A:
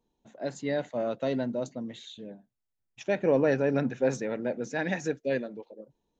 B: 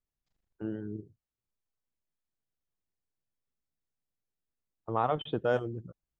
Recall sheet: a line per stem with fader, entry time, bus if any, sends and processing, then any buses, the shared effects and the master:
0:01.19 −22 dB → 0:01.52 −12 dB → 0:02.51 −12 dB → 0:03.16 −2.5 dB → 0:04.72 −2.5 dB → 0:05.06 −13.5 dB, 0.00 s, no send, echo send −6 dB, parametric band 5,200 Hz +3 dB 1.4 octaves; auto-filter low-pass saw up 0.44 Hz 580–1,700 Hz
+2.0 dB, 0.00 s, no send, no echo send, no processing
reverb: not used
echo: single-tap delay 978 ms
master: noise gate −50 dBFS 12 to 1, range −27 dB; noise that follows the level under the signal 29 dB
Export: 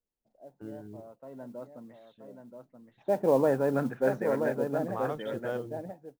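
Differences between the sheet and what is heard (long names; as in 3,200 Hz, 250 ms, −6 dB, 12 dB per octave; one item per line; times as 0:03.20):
stem B +2.0 dB → −7.0 dB
master: missing noise gate −50 dBFS 12 to 1, range −27 dB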